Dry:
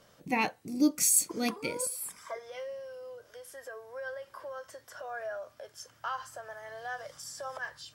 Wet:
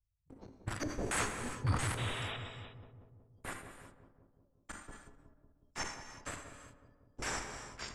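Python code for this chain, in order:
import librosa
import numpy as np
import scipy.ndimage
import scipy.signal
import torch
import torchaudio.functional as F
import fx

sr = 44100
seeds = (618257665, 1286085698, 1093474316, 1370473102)

p1 = fx.block_float(x, sr, bits=7)
p2 = fx.noise_reduce_blind(p1, sr, reduce_db=25)
p3 = scipy.signal.sosfilt(scipy.signal.cheby2(4, 50, [220.0, 2800.0], 'bandstop', fs=sr, output='sos'), p2)
p4 = fx.bass_treble(p3, sr, bass_db=8, treble_db=2)
p5 = p4 + 0.39 * np.pad(p4, (int(3.5 * sr / 1000.0), 0))[:len(p4)]
p6 = fx.fuzz(p5, sr, gain_db=48.0, gate_db=-57.0)
p7 = p5 + F.gain(torch.from_numpy(p6), -10.5).numpy()
p8 = fx.filter_lfo_lowpass(p7, sr, shape='square', hz=1.8, low_hz=430.0, high_hz=1700.0, q=1.3)
p9 = fx.spec_paint(p8, sr, seeds[0], shape='noise', start_s=1.97, length_s=0.4, low_hz=360.0, high_hz=3900.0, level_db=-51.0)
p10 = p9 + fx.echo_filtered(p9, sr, ms=184, feedback_pct=68, hz=830.0, wet_db=-7.5, dry=0)
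p11 = fx.rev_gated(p10, sr, seeds[1], gate_ms=390, shape='flat', drr_db=7.0)
p12 = fx.sustainer(p11, sr, db_per_s=91.0)
y = F.gain(torch.from_numpy(p12), 8.5).numpy()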